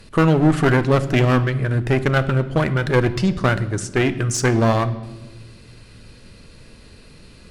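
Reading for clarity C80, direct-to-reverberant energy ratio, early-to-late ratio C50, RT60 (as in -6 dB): 16.5 dB, 11.5 dB, 14.5 dB, 1.2 s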